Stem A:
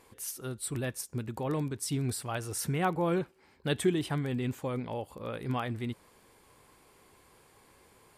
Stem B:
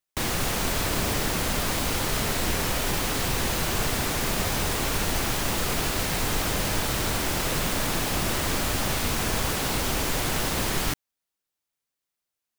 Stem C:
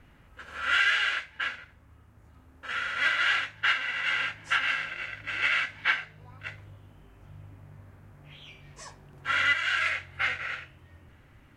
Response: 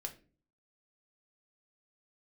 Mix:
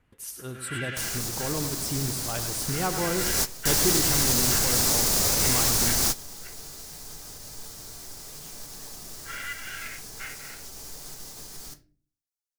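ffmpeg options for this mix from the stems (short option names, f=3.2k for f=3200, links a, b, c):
-filter_complex "[0:a]agate=range=-23dB:threshold=-54dB:ratio=16:detection=peak,volume=0dB,asplit=3[a][b][c];[b]volume=-8.5dB[d];[1:a]highshelf=f=3.9k:t=q:w=1.5:g=10,alimiter=limit=-12.5dB:level=0:latency=1:release=130,adelay=800,volume=-0.5dB,afade=t=in:st=3.14:d=0.29:silence=0.334965,asplit=2[e][f];[f]volume=-17.5dB[g];[2:a]volume=-12dB[h];[c]apad=whole_len=590270[i];[e][i]sidechaingate=range=-33dB:threshold=-57dB:ratio=16:detection=peak[j];[3:a]atrim=start_sample=2205[k];[g][k]afir=irnorm=-1:irlink=0[l];[d]aecho=0:1:102|204|306|408|510|612:1|0.4|0.16|0.064|0.0256|0.0102[m];[a][j][h][l][m]amix=inputs=5:normalize=0"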